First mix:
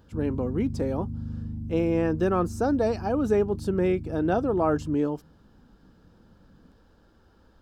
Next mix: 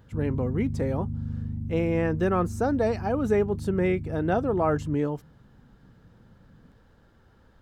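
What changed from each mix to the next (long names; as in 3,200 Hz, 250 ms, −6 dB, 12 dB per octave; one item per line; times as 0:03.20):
master: add thirty-one-band graphic EQ 125 Hz +12 dB, 315 Hz −4 dB, 2,000 Hz +8 dB, 5,000 Hz −5 dB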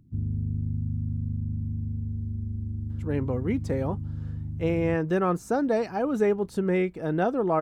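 speech: entry +2.90 s
background: add parametric band 92 Hz +6.5 dB 0.26 octaves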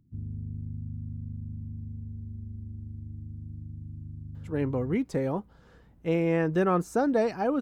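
speech: entry +1.45 s
background −7.5 dB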